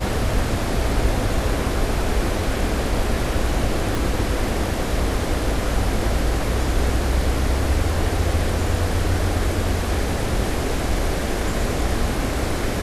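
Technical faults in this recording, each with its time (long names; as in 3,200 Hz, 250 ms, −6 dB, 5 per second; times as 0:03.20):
0:03.95: click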